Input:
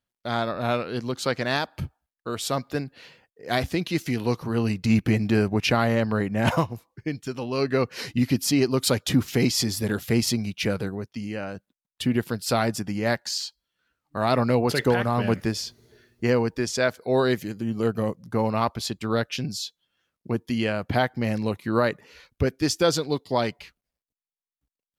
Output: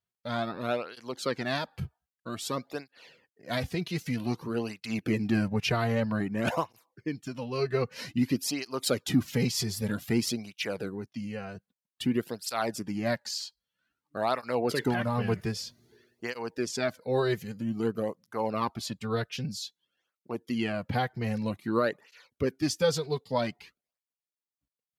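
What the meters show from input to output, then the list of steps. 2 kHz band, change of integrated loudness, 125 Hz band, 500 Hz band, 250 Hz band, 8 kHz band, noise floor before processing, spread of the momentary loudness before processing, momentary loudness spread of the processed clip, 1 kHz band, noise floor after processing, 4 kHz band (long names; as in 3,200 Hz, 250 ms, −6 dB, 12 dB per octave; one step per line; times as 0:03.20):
−6.0 dB, −6.0 dB, −6.5 dB, −5.5 dB, −6.0 dB, −6.0 dB, below −85 dBFS, 10 LU, 11 LU, −5.5 dB, below −85 dBFS, −6.0 dB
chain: through-zero flanger with one copy inverted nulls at 0.52 Hz, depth 3.8 ms
level −3 dB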